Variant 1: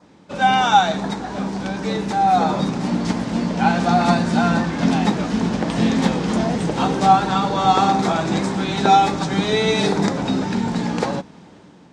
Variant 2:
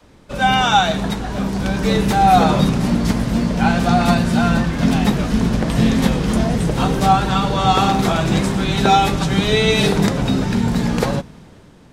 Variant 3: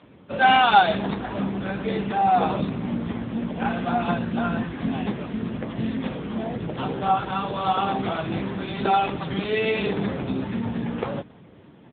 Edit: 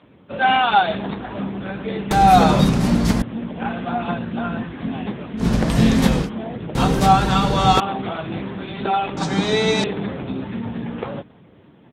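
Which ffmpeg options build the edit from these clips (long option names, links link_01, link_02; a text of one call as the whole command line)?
ffmpeg -i take0.wav -i take1.wav -i take2.wav -filter_complex "[1:a]asplit=3[link_01][link_02][link_03];[2:a]asplit=5[link_04][link_05][link_06][link_07][link_08];[link_04]atrim=end=2.112[link_09];[link_01]atrim=start=2.108:end=3.222[link_10];[link_05]atrim=start=3.218:end=5.47[link_11];[link_02]atrim=start=5.37:end=6.3[link_12];[link_06]atrim=start=6.2:end=6.752[link_13];[link_03]atrim=start=6.748:end=7.802[link_14];[link_07]atrim=start=7.798:end=9.172[link_15];[0:a]atrim=start=9.168:end=9.842[link_16];[link_08]atrim=start=9.838[link_17];[link_09][link_10]acrossfade=duration=0.004:curve1=hsin:curve2=hsin[link_18];[link_18][link_11]acrossfade=duration=0.004:curve1=hsin:curve2=hsin[link_19];[link_19][link_12]acrossfade=duration=0.1:curve1=tri:curve2=tri[link_20];[link_20][link_13]acrossfade=duration=0.1:curve1=tri:curve2=tri[link_21];[link_21][link_14]acrossfade=duration=0.004:curve1=hsin:curve2=hsin[link_22];[link_22][link_15]acrossfade=duration=0.004:curve1=hsin:curve2=hsin[link_23];[link_23][link_16]acrossfade=duration=0.004:curve1=hsin:curve2=hsin[link_24];[link_24][link_17]acrossfade=duration=0.004:curve1=hsin:curve2=hsin" out.wav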